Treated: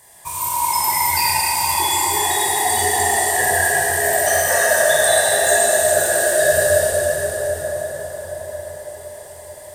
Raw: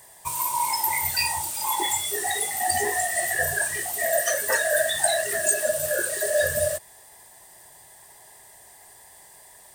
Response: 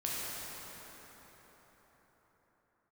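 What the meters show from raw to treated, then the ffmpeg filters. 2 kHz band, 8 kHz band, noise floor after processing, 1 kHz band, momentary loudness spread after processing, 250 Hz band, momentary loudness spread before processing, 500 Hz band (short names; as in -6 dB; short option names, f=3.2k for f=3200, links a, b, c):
+7.5 dB, +7.5 dB, -38 dBFS, +9.5 dB, 16 LU, +9.0 dB, 4 LU, +9.5 dB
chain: -filter_complex "[1:a]atrim=start_sample=2205,asetrate=29106,aresample=44100[a];[0:a][a]afir=irnorm=-1:irlink=0"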